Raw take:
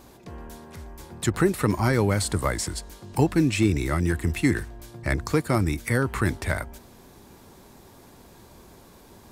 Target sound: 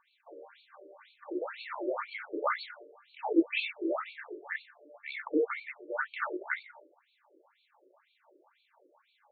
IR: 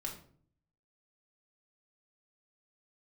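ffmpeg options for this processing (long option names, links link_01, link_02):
-filter_complex "[0:a]bandreject=frequency=50:width_type=h:width=6,bandreject=frequency=100:width_type=h:width=6,bandreject=frequency=150:width_type=h:width=6,bandreject=frequency=200:width_type=h:width=6,bandreject=frequency=250:width_type=h:width=6,bandreject=frequency=300:width_type=h:width=6,bandreject=frequency=350:width_type=h:width=6,bandreject=frequency=400:width_type=h:width=6,agate=range=-7dB:threshold=-46dB:ratio=16:detection=peak[link_01];[1:a]atrim=start_sample=2205,atrim=end_sample=4410[link_02];[link_01][link_02]afir=irnorm=-1:irlink=0,afftfilt=real='re*between(b*sr/1024,410*pow(3200/410,0.5+0.5*sin(2*PI*2*pts/sr))/1.41,410*pow(3200/410,0.5+0.5*sin(2*PI*2*pts/sr))*1.41)':imag='im*between(b*sr/1024,410*pow(3200/410,0.5+0.5*sin(2*PI*2*pts/sr))/1.41,410*pow(3200/410,0.5+0.5*sin(2*PI*2*pts/sr))*1.41)':win_size=1024:overlap=0.75,volume=1dB"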